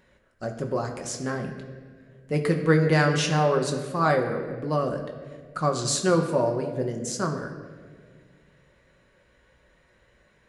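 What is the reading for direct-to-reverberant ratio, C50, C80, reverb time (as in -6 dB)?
2.0 dB, 7.0 dB, 8.5 dB, 1.9 s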